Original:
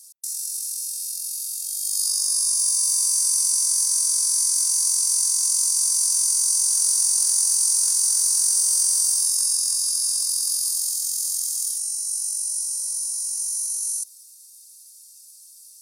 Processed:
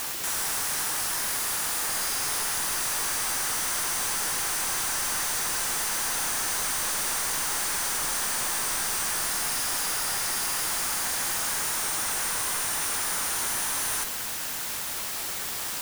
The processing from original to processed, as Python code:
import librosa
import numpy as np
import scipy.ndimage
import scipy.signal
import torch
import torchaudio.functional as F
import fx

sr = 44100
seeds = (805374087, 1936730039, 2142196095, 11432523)

y = fx.halfwave_hold(x, sr)
y = scipy.signal.sosfilt(scipy.signal.butter(4, 260.0, 'highpass', fs=sr, output='sos'), y)
y = fx.band_shelf(y, sr, hz=1200.0, db=15.5, octaves=1.7)
y = fx.cheby_harmonics(y, sr, harmonics=(4,), levels_db=(-18,), full_scale_db=-0.5)
y = np.clip(10.0 ** (32.5 / 20.0) * y, -1.0, 1.0) / 10.0 ** (32.5 / 20.0)
y = fx.quant_dither(y, sr, seeds[0], bits=6, dither='triangular')
y = y * librosa.db_to_amplitude(3.0)